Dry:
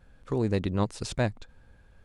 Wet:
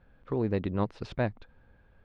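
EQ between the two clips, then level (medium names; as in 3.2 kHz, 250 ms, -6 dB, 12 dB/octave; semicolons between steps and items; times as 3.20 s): distance through air 310 m; bass shelf 140 Hz -5.5 dB; 0.0 dB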